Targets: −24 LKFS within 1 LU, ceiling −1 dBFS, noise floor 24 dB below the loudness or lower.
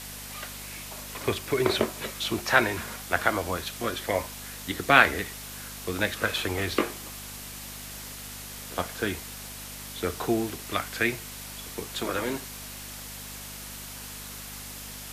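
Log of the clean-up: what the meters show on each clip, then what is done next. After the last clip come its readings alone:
mains hum 50 Hz; hum harmonics up to 250 Hz; level of the hum −44 dBFS; background noise floor −41 dBFS; target noise floor −54 dBFS; integrated loudness −29.5 LKFS; sample peak −2.0 dBFS; target loudness −24.0 LKFS
→ hum removal 50 Hz, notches 5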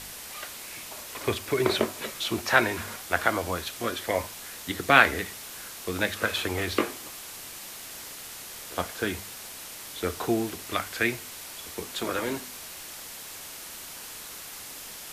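mains hum none found; background noise floor −42 dBFS; target noise floor −54 dBFS
→ broadband denoise 12 dB, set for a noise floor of −42 dBFS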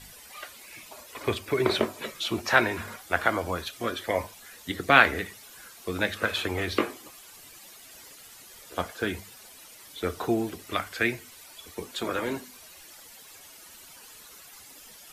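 background noise floor −50 dBFS; target noise floor −52 dBFS
→ broadband denoise 6 dB, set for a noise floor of −50 dBFS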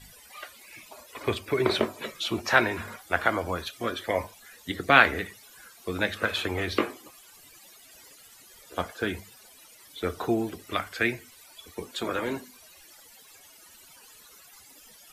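background noise floor −53 dBFS; integrated loudness −27.5 LKFS; sample peak −2.0 dBFS; target loudness −24.0 LKFS
→ level +3.5 dB
brickwall limiter −1 dBFS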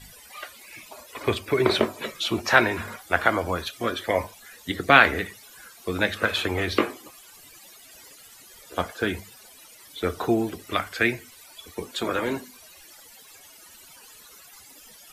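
integrated loudness −24.5 LKFS; sample peak −1.0 dBFS; background noise floor −50 dBFS

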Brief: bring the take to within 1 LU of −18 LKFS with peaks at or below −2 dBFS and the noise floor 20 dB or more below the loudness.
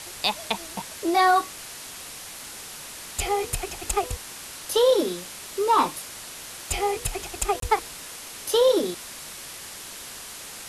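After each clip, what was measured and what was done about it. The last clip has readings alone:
number of dropouts 1; longest dropout 23 ms; background noise floor −40 dBFS; target noise floor −45 dBFS; integrated loudness −25.0 LKFS; sample peak −9.5 dBFS; target loudness −18.0 LKFS
→ repair the gap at 0:07.60, 23 ms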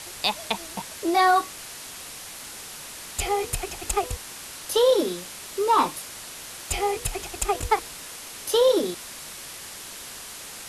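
number of dropouts 0; background noise floor −40 dBFS; target noise floor −45 dBFS
→ broadband denoise 6 dB, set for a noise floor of −40 dBFS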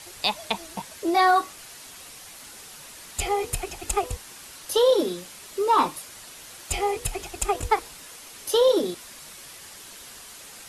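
background noise floor −44 dBFS; target noise floor −45 dBFS
→ broadband denoise 6 dB, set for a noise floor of −44 dBFS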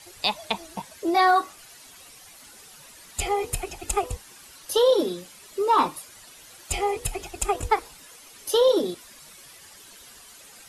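background noise floor −49 dBFS; integrated loudness −24.5 LKFS; sample peak −9.5 dBFS; target loudness −18.0 LKFS
→ level +6.5 dB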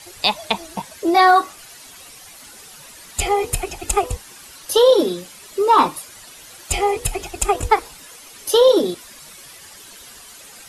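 integrated loudness −18.0 LKFS; sample peak −3.0 dBFS; background noise floor −42 dBFS

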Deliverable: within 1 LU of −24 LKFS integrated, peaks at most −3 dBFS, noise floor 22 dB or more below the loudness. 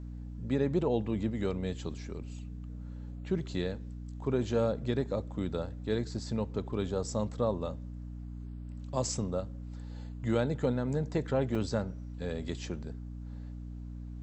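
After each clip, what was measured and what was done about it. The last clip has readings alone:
number of dropouts 1; longest dropout 1.1 ms; mains hum 60 Hz; hum harmonics up to 300 Hz; level of the hum −39 dBFS; integrated loudness −34.5 LKFS; sample peak −16.0 dBFS; target loudness −24.0 LKFS
→ repair the gap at 0:11.55, 1.1 ms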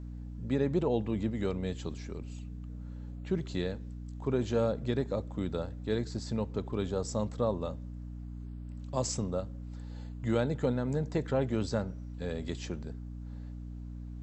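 number of dropouts 0; mains hum 60 Hz; hum harmonics up to 300 Hz; level of the hum −39 dBFS
→ mains-hum notches 60/120/180/240/300 Hz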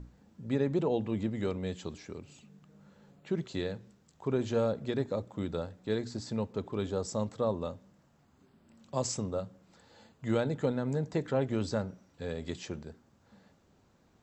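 mains hum none found; integrated loudness −34.0 LKFS; sample peak −16.5 dBFS; target loudness −24.0 LKFS
→ level +10 dB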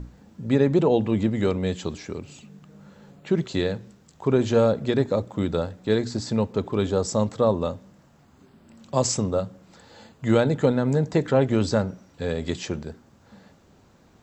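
integrated loudness −24.0 LKFS; sample peak −6.5 dBFS; background noise floor −57 dBFS

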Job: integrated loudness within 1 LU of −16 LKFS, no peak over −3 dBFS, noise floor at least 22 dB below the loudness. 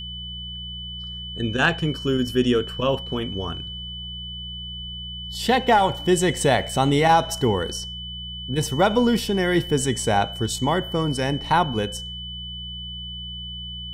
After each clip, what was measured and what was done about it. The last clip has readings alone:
mains hum 60 Hz; hum harmonics up to 180 Hz; level of the hum −36 dBFS; interfering tone 3,000 Hz; level of the tone −33 dBFS; integrated loudness −23.5 LKFS; sample peak −6.0 dBFS; target loudness −16.0 LKFS
→ hum removal 60 Hz, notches 3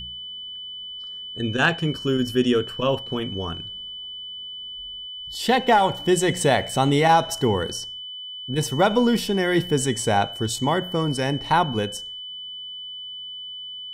mains hum none found; interfering tone 3,000 Hz; level of the tone −33 dBFS
→ notch filter 3,000 Hz, Q 30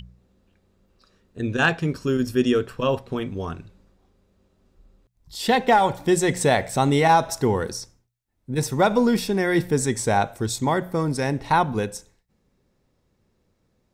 interfering tone none found; integrated loudness −22.0 LKFS; sample peak −6.5 dBFS; target loudness −16.0 LKFS
→ level +6 dB
brickwall limiter −3 dBFS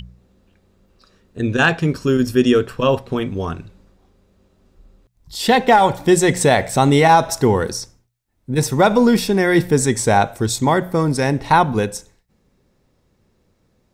integrated loudness −16.5 LKFS; sample peak −3.0 dBFS; background noise floor −64 dBFS

